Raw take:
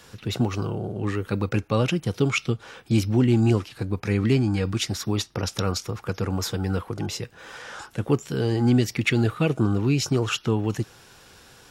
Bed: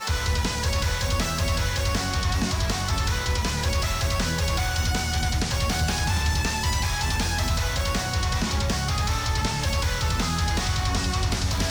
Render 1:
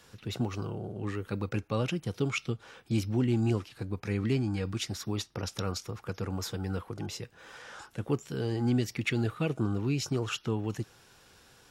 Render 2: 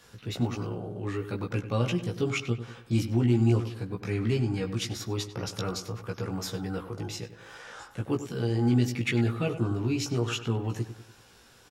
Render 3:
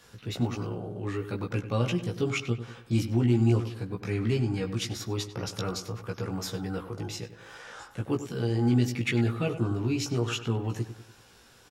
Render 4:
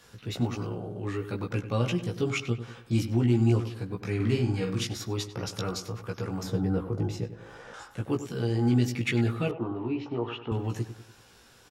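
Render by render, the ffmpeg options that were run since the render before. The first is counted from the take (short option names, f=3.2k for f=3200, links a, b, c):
-af "volume=-8dB"
-filter_complex "[0:a]asplit=2[a][b];[b]adelay=17,volume=-3dB[c];[a][c]amix=inputs=2:normalize=0,asplit=2[d][e];[e]adelay=97,lowpass=f=2.6k:p=1,volume=-11dB,asplit=2[f][g];[g]adelay=97,lowpass=f=2.6k:p=1,volume=0.46,asplit=2[h][i];[i]adelay=97,lowpass=f=2.6k:p=1,volume=0.46,asplit=2[j][k];[k]adelay=97,lowpass=f=2.6k:p=1,volume=0.46,asplit=2[l][m];[m]adelay=97,lowpass=f=2.6k:p=1,volume=0.46[n];[d][f][h][j][l][n]amix=inputs=6:normalize=0"
-af anull
-filter_complex "[0:a]asettb=1/sr,asplit=3[a][b][c];[a]atrim=end=4.154[d];[b]atrim=start=4.15:end=4.87,asetpts=PTS-STARTPTS,afade=t=in:d=0.004:c=qsin,afade=t=out:st=0.716:d=0.004:c=qsin,asplit=2[e][f];[f]adelay=48,volume=-4.5dB[g];[e][g]amix=inputs=2:normalize=0,atrim=end_sample=31752[h];[c]atrim=start=4.866[i];[d][h]acrossfade=d=0.004:c1=hsin:c2=qsin[j];[j][i]acrossfade=d=0.004:c1=qsin:c2=hsin,asettb=1/sr,asplit=3[k][l][m];[k]atrim=end=6.434[n];[l]atrim=start=6.43:end=7.74,asetpts=PTS-STARTPTS,afade=t=in:d=0.004:c=qsin,afade=t=out:st=1.306:d=0.004:c=qsin,tiltshelf=f=970:g=7.5[o];[m]atrim=start=7.736[p];[n][o]acrossfade=d=0.004:c1=hsin:c2=qsin[q];[q][p]acrossfade=d=0.004:c1=qsin:c2=hsin,asettb=1/sr,asplit=3[r][s][t];[r]atrim=end=9.514[u];[s]atrim=start=9.51:end=10.52,asetpts=PTS-STARTPTS,afade=t=in:d=0.004:c=qsin,afade=t=out:st=1.006:d=0.004:c=qsin,highpass=180,equalizer=f=180:t=q:w=4:g=-9,equalizer=f=900:t=q:w=4:g=6,equalizer=f=1.5k:t=q:w=4:g=-9,equalizer=f=2.3k:t=q:w=4:g=-6,lowpass=f=2.7k:w=0.5412,lowpass=f=2.7k:w=1.3066[v];[t]atrim=start=10.516[w];[u][v]acrossfade=d=0.004:c1=hsin:c2=qsin[x];[x][w]acrossfade=d=0.004:c1=qsin:c2=hsin"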